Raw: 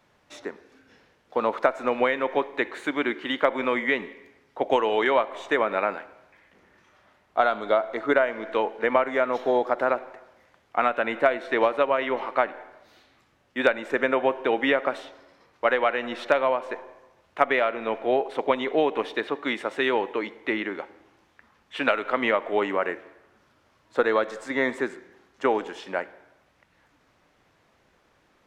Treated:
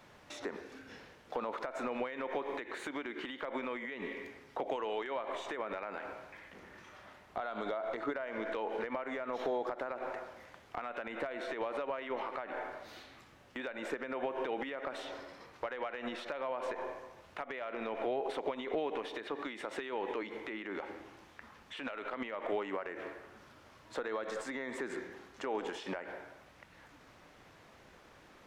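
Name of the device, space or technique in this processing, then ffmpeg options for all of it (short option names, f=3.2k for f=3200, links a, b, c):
de-esser from a sidechain: -filter_complex "[0:a]asplit=2[a][b];[b]highpass=f=4.5k:p=1,apad=whole_len=1255192[c];[a][c]sidechaincompress=threshold=-52dB:ratio=12:attack=2.2:release=67,volume=5dB"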